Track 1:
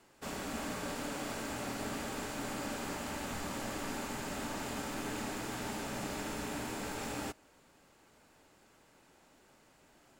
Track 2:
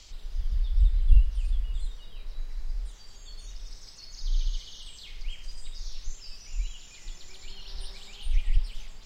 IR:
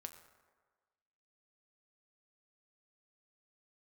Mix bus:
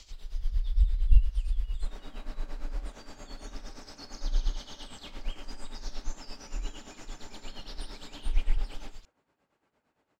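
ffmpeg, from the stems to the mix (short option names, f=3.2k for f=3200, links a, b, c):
-filter_complex "[0:a]highpass=f=630:p=1,aemphasis=mode=reproduction:type=riaa,adelay=1600,volume=-8.5dB,asplit=2[a][b];[b]volume=-3.5dB[c];[1:a]volume=1dB[d];[2:a]atrim=start_sample=2205[e];[c][e]afir=irnorm=-1:irlink=0[f];[a][d][f]amix=inputs=3:normalize=0,tremolo=f=8.7:d=0.71"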